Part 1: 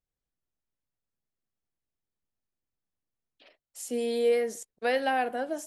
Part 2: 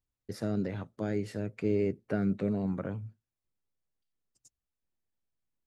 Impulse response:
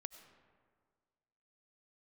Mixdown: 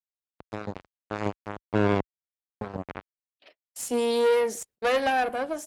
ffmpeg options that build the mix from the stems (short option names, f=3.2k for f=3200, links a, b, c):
-filter_complex "[0:a]agate=range=-27dB:threshold=-57dB:ratio=16:detection=peak,aeval=exprs='(tanh(20*val(0)+0.65)-tanh(0.65))/20':c=same,volume=2.5dB[a];[1:a]acrusher=bits=3:mix=0:aa=0.5,adelay=100,volume=0dB,asplit=3[b][c][d];[b]atrim=end=2.03,asetpts=PTS-STARTPTS,afade=t=out:st=2.026:d=0.004:c=hsin[e];[c]atrim=start=2.03:end=2.61,asetpts=PTS-STARTPTS,volume=0[f];[d]atrim=start=2.61,asetpts=PTS-STARTPTS,afade=t=in:d=0.004:c=hsin[g];[e][f][g]concat=n=3:v=0:a=1[h];[a][h]amix=inputs=2:normalize=0,highpass=47,dynaudnorm=f=380:g=5:m=6dB"